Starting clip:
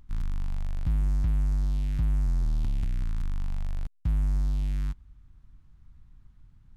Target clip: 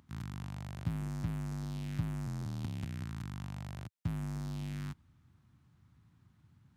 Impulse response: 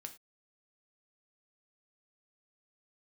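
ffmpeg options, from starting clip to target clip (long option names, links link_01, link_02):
-af "highpass=frequency=97:width=0.5412,highpass=frequency=97:width=1.3066"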